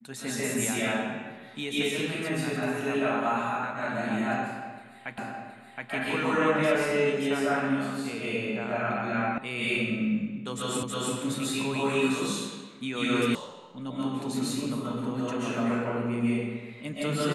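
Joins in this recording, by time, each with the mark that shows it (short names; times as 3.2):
5.18 repeat of the last 0.72 s
9.38 sound cut off
10.83 repeat of the last 0.32 s
13.35 sound cut off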